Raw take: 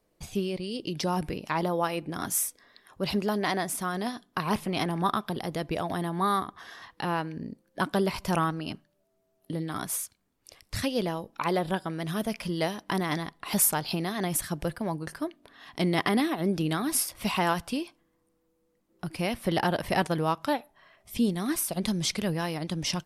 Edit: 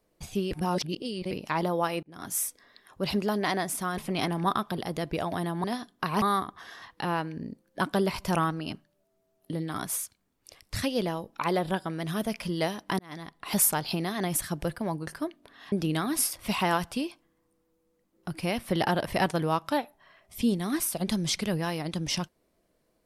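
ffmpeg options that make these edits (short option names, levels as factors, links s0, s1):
-filter_complex "[0:a]asplit=9[s0][s1][s2][s3][s4][s5][s6][s7][s8];[s0]atrim=end=0.512[s9];[s1]atrim=start=0.508:end=1.312,asetpts=PTS-STARTPTS,areverse[s10];[s2]atrim=start=1.308:end=2.03,asetpts=PTS-STARTPTS,afade=t=out:st=0.718:d=0.004:c=hsin[s11];[s3]atrim=start=2.03:end=3.982,asetpts=PTS-STARTPTS,afade=t=in:d=0.45[s12];[s4]atrim=start=4.558:end=6.222[s13];[s5]atrim=start=3.978:end=4.562[s14];[s6]atrim=start=6.218:end=12.99,asetpts=PTS-STARTPTS,afade=t=out:st=6.768:d=0.004:c=hsin[s15];[s7]atrim=start=12.99:end=15.722,asetpts=PTS-STARTPTS,afade=t=in:d=0.54[s16];[s8]atrim=start=16.478[s17];[s9][s10]acrossfade=d=0.004:c1=hsin:c2=hsin[s18];[s11][s12]concat=n=2:v=0:a=1[s19];[s18][s19]acrossfade=d=0.004:c1=hsin:c2=hsin[s20];[s20][s13]acrossfade=d=0.004:c1=hsin:c2=hsin[s21];[s21][s14]acrossfade=d=0.004:c1=hsin:c2=hsin[s22];[s15][s16]concat=n=2:v=0:a=1[s23];[s22][s23]acrossfade=d=0.004:c1=hsin:c2=hsin[s24];[s24][s17]acrossfade=d=0.004:c1=hsin:c2=hsin"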